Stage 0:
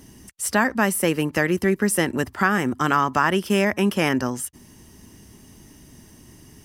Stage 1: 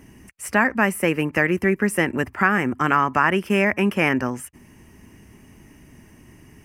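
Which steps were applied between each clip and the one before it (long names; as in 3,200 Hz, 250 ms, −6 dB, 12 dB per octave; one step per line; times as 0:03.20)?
high shelf with overshoot 3,000 Hz −6.5 dB, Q 3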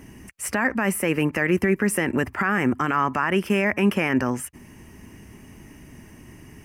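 brickwall limiter −14 dBFS, peak gain reduction 10.5 dB
level +3 dB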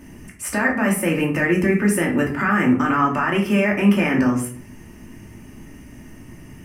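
rectangular room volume 420 cubic metres, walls furnished, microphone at 2.6 metres
level −1.5 dB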